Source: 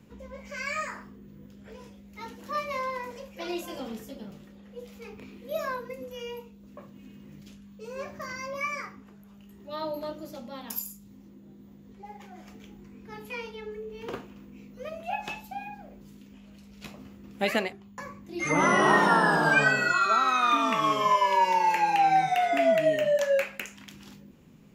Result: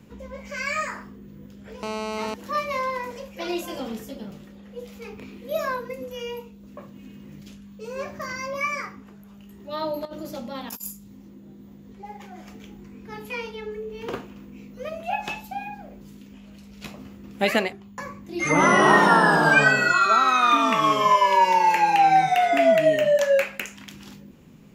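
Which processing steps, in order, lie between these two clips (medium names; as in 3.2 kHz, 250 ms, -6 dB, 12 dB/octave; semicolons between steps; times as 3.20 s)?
1.83–2.34 s: mobile phone buzz -35 dBFS; 10.05–10.91 s: compressor with a negative ratio -39 dBFS, ratio -0.5; trim +5 dB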